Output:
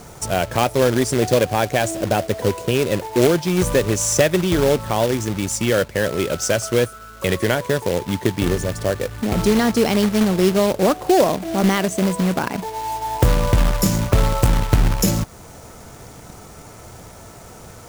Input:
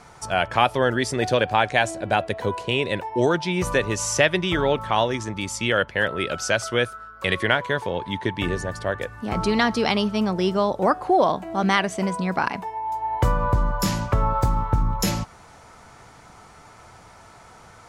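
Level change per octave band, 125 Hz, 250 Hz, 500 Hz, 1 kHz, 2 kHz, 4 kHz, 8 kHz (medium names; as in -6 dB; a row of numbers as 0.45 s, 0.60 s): +6.0 dB, +6.0 dB, +5.0 dB, -1.0 dB, -2.0 dB, +1.0 dB, +7.5 dB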